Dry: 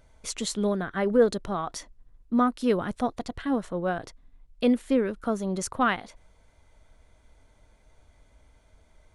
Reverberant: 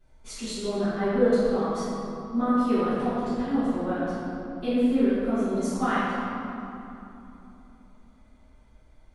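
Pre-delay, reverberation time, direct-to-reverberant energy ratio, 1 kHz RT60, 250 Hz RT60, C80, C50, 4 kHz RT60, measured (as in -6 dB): 3 ms, 3.0 s, -19.5 dB, 3.0 s, 4.1 s, -2.5 dB, -4.5 dB, 1.7 s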